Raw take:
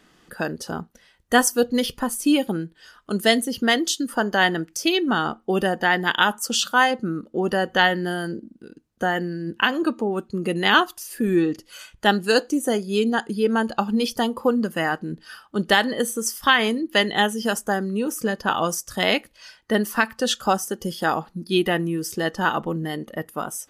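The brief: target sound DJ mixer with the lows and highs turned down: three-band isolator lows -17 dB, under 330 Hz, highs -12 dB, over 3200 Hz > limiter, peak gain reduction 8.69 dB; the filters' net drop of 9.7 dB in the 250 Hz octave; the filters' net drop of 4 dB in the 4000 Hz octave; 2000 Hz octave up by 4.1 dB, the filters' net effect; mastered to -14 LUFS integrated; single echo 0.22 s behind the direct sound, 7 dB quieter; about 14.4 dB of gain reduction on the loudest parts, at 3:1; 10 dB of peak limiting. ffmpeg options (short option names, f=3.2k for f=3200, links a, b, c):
-filter_complex "[0:a]equalizer=f=250:t=o:g=-3,equalizer=f=2k:t=o:g=6.5,equalizer=f=4k:t=o:g=-3.5,acompressor=threshold=-30dB:ratio=3,alimiter=limit=-22.5dB:level=0:latency=1,acrossover=split=330 3200:gain=0.141 1 0.251[a][b][c];[a][b][c]amix=inputs=3:normalize=0,aecho=1:1:220:0.447,volume=24.5dB,alimiter=limit=-3.5dB:level=0:latency=1"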